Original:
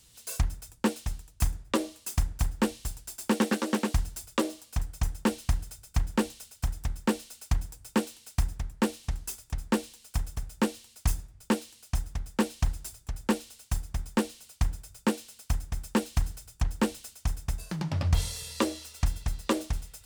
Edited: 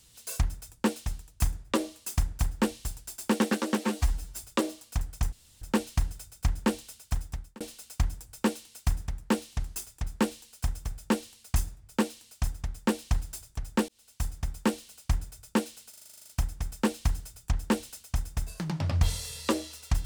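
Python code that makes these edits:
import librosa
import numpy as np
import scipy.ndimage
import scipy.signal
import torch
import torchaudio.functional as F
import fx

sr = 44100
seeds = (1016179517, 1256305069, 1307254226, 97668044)

y = fx.edit(x, sr, fx.stretch_span(start_s=3.78, length_s=0.39, factor=1.5),
    fx.insert_room_tone(at_s=5.13, length_s=0.29),
    fx.fade_out_span(start_s=6.68, length_s=0.44),
    fx.fade_in_span(start_s=13.4, length_s=0.41),
    fx.stutter(start_s=15.41, slice_s=0.04, count=11), tone=tone)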